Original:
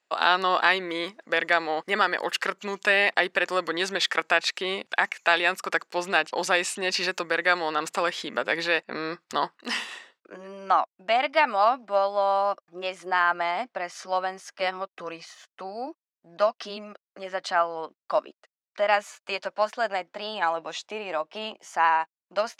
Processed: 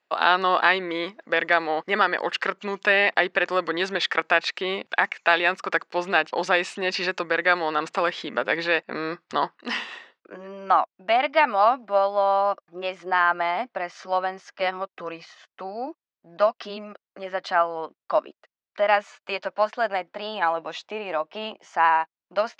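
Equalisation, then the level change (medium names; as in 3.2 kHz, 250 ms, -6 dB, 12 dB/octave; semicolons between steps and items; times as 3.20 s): distance through air 150 m; +3.0 dB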